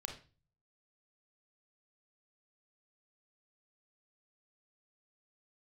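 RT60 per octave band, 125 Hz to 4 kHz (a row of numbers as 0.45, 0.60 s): 0.75, 0.50, 0.35, 0.35, 0.35, 0.35 s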